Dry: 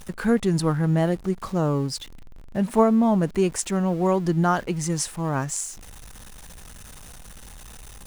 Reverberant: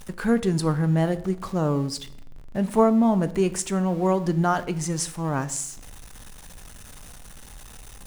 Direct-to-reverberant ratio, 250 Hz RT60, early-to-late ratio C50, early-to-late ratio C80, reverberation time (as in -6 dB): 12.0 dB, 0.95 s, 16.5 dB, 19.0 dB, 0.70 s